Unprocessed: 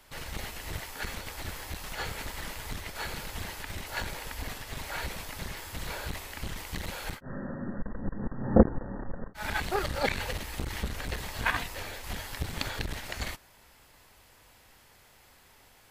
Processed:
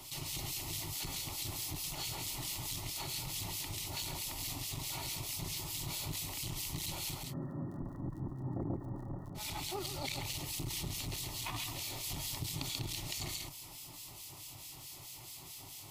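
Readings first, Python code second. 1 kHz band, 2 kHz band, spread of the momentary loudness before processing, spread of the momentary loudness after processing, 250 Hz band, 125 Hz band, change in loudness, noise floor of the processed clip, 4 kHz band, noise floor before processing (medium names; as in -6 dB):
-9.5 dB, -12.0 dB, 9 LU, 9 LU, -10.5 dB, -4.0 dB, -5.0 dB, -51 dBFS, +0.5 dB, -59 dBFS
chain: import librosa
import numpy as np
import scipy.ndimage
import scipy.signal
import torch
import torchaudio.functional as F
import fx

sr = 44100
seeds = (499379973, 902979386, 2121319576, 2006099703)

p1 = fx.bass_treble(x, sr, bass_db=-11, treble_db=-4)
p2 = fx.rider(p1, sr, range_db=4, speed_s=0.5)
p3 = p1 + (p2 * 10.0 ** (3.0 / 20.0))
p4 = fx.dmg_crackle(p3, sr, seeds[0], per_s=45.0, level_db=-52.0)
p5 = scipy.signal.sosfilt(scipy.signal.butter(2, 45.0, 'highpass', fs=sr, output='sos'), p4)
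p6 = fx.fixed_phaser(p5, sr, hz=320.0, stages=8)
p7 = p6 + 10.0 ** (-6.0 / 20.0) * np.pad(p6, (int(136 * sr / 1000.0), 0))[:len(p6)]
p8 = fx.harmonic_tremolo(p7, sr, hz=4.6, depth_pct=70, crossover_hz=1800.0)
p9 = fx.curve_eq(p8, sr, hz=(140.0, 700.0, 5800.0), db=(0, -20, -4))
y = fx.env_flatten(p9, sr, amount_pct=50)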